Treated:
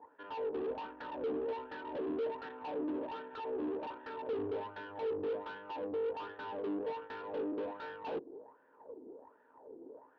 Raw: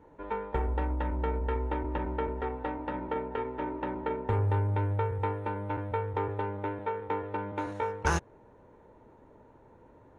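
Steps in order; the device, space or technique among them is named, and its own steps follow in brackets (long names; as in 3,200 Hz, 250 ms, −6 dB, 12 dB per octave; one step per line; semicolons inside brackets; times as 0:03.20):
0:03.40–0:04.38: low-shelf EQ 320 Hz −5.5 dB
wah-wah guitar rig (LFO wah 1.3 Hz 330–1,700 Hz, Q 5.7; tube saturation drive 52 dB, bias 0.65; loudspeaker in its box 110–3,500 Hz, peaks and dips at 130 Hz −8 dB, 270 Hz +10 dB, 450 Hz +7 dB, 1,300 Hz −5 dB, 2,100 Hz −10 dB)
level +12.5 dB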